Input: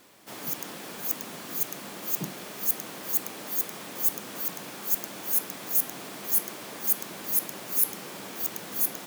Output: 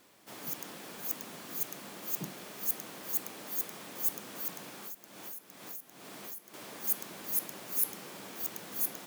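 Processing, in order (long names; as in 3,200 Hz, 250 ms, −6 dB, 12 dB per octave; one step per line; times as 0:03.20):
0:04.66–0:06.54: downward compressor 16 to 1, threshold −35 dBFS, peak gain reduction 18 dB
level −6 dB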